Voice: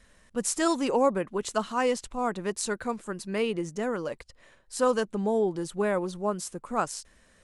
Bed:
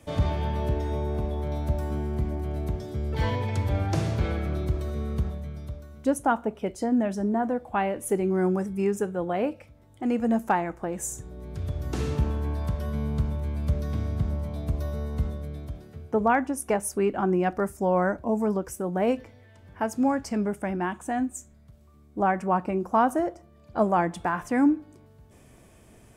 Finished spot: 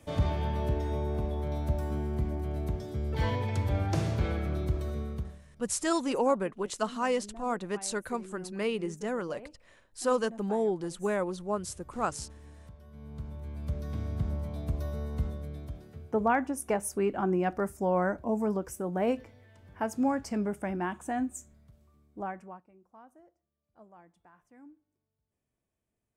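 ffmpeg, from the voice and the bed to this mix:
-filter_complex "[0:a]adelay=5250,volume=-3dB[a];[1:a]volume=15dB,afade=t=out:st=4.92:d=0.52:silence=0.112202,afade=t=in:st=12.9:d=1.41:silence=0.125893,afade=t=out:st=21.51:d=1.12:silence=0.0375837[b];[a][b]amix=inputs=2:normalize=0"

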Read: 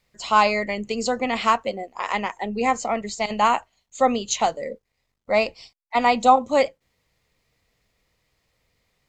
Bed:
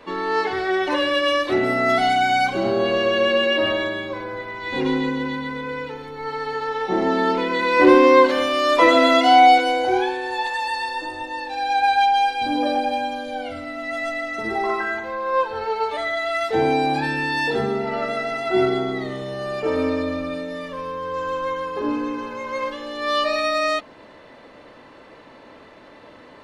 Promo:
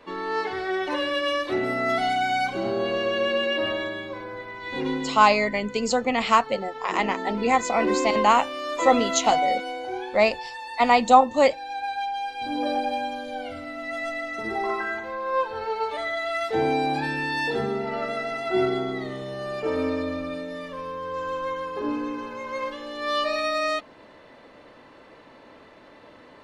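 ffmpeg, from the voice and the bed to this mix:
-filter_complex "[0:a]adelay=4850,volume=0.5dB[a];[1:a]volume=2.5dB,afade=t=out:st=4.9:d=0.39:silence=0.473151,afade=t=in:st=12.23:d=0.49:silence=0.398107[b];[a][b]amix=inputs=2:normalize=0"

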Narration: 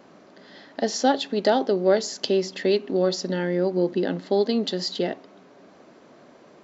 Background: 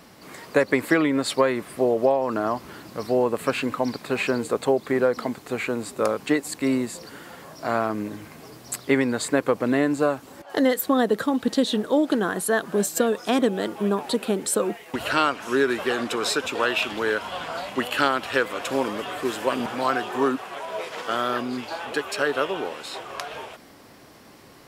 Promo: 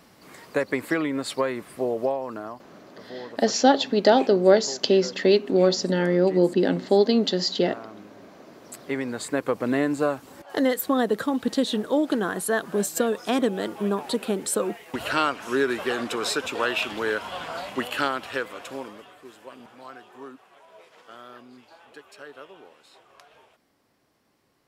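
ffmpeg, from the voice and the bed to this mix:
-filter_complex "[0:a]adelay=2600,volume=3dB[a];[1:a]volume=10.5dB,afade=t=out:st=2.05:d=0.61:silence=0.237137,afade=t=in:st=8.45:d=1.28:silence=0.16788,afade=t=out:st=17.7:d=1.46:silence=0.133352[b];[a][b]amix=inputs=2:normalize=0"

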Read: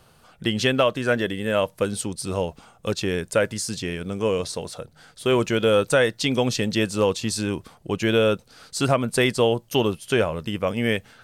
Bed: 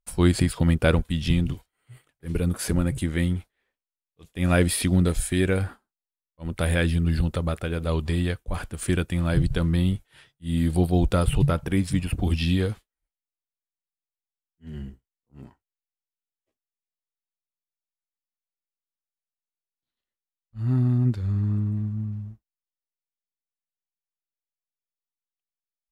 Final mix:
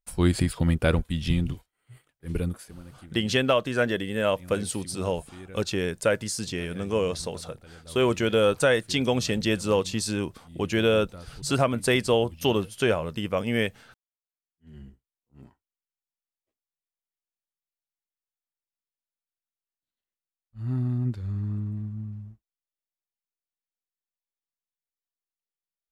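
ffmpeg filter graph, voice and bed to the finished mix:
-filter_complex "[0:a]adelay=2700,volume=-2.5dB[a];[1:a]volume=13.5dB,afade=t=out:st=2.4:d=0.26:silence=0.112202,afade=t=in:st=14.18:d=1.09:silence=0.158489[b];[a][b]amix=inputs=2:normalize=0"

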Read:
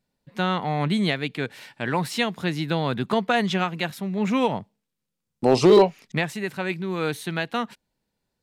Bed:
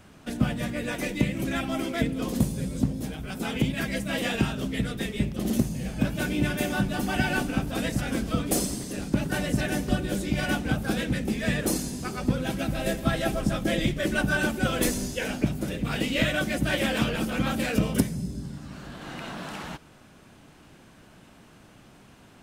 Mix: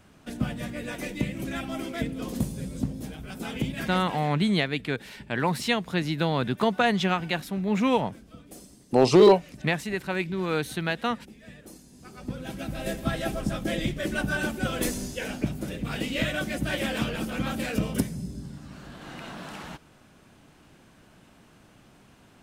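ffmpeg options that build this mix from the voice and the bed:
-filter_complex "[0:a]adelay=3500,volume=-1dB[a];[1:a]volume=14dB,afade=t=out:st=3.83:d=0.48:silence=0.141254,afade=t=in:st=11.87:d=1.12:silence=0.125893[b];[a][b]amix=inputs=2:normalize=0"

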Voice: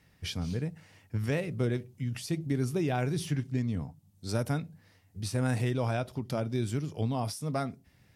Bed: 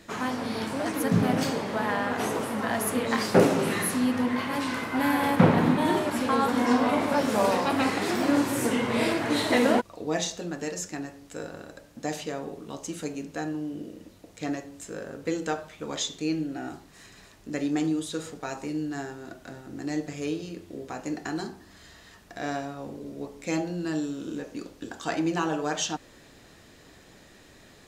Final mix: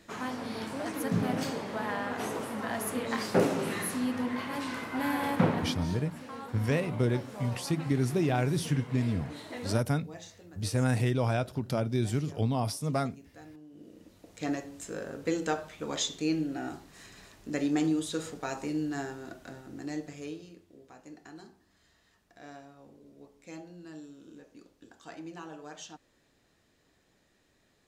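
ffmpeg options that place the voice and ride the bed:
-filter_complex "[0:a]adelay=5400,volume=2dB[a];[1:a]volume=11.5dB,afade=t=out:st=5.39:d=0.49:silence=0.237137,afade=t=in:st=13.7:d=0.81:silence=0.133352,afade=t=out:st=19.09:d=1.59:silence=0.16788[b];[a][b]amix=inputs=2:normalize=0"

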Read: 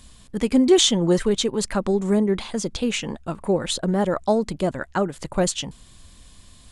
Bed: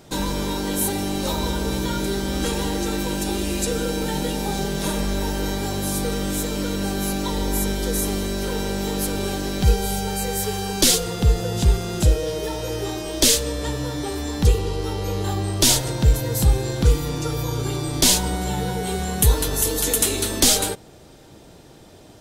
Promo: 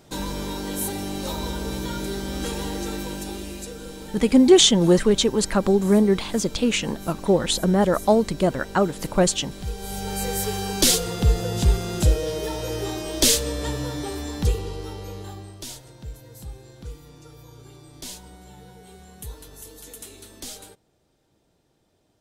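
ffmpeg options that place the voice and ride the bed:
-filter_complex "[0:a]adelay=3800,volume=2.5dB[a];[1:a]volume=7.5dB,afade=t=out:st=2.87:d=0.9:silence=0.354813,afade=t=in:st=9.74:d=0.52:silence=0.237137,afade=t=out:st=13.72:d=1.94:silence=0.105925[b];[a][b]amix=inputs=2:normalize=0"

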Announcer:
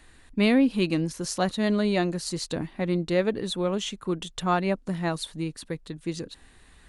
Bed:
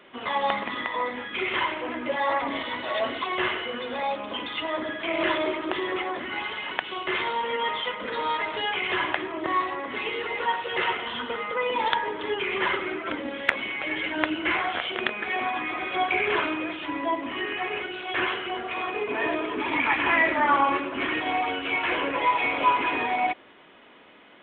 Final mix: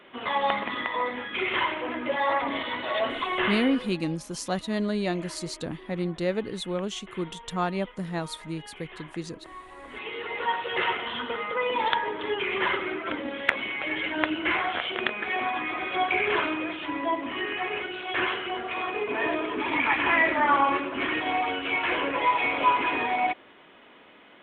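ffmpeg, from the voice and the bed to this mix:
-filter_complex "[0:a]adelay=3100,volume=-3.5dB[a];[1:a]volume=18.5dB,afade=t=out:st=3.63:d=0.35:silence=0.112202,afade=t=in:st=9.65:d=0.93:silence=0.11885[b];[a][b]amix=inputs=2:normalize=0"

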